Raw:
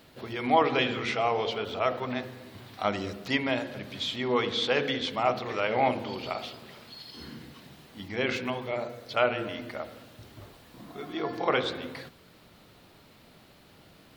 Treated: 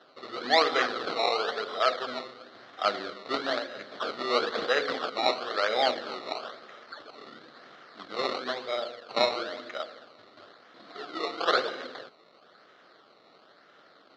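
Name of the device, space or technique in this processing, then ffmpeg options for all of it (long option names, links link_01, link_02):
circuit-bent sampling toy: -filter_complex "[0:a]asettb=1/sr,asplit=3[link_01][link_02][link_03];[link_01]atrim=end=7.594[link_04];[link_02]atrim=start=7.59:end=8.32,asetpts=PTS-STARTPTS,afade=type=in:duration=0.004:curve=qsin,afade=type=out:start_time=0.726:duration=0.004:curve=qsin,highshelf=frequency=5500:gain=8.5[link_05];[link_03]atrim=start=8.316[link_06];[link_04][link_05]acrossfade=duration=0.004:curve1=hsin:curve2=qsin[link_07];[link_07][link_06]acrossfade=duration=0.004:curve1=qsin:curve2=hsin,acrusher=samples=19:mix=1:aa=0.000001:lfo=1:lforange=19:lforate=1,highpass=520,equalizer=frequency=920:width_type=q:width=4:gain=-10,equalizer=frequency=1300:width_type=q:width=4:gain=5,equalizer=frequency=2500:width_type=q:width=4:gain=-9,equalizer=frequency=4200:width_type=q:width=4:gain=9,lowpass=frequency=4200:width=0.5412,lowpass=frequency=4200:width=1.3066,volume=3.5dB"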